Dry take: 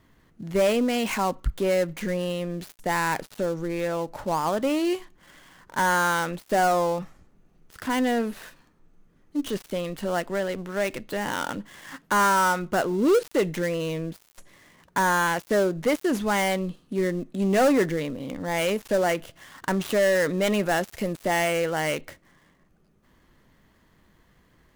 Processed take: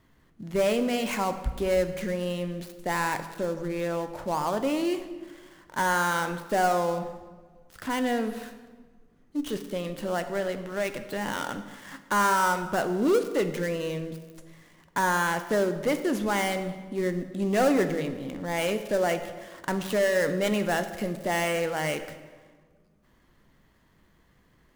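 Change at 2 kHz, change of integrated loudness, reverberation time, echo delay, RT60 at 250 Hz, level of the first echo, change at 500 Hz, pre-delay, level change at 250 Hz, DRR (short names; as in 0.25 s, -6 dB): -2.5 dB, -2.5 dB, 1.5 s, none, 1.6 s, none, -2.5 dB, 11 ms, -2.5 dB, 9.0 dB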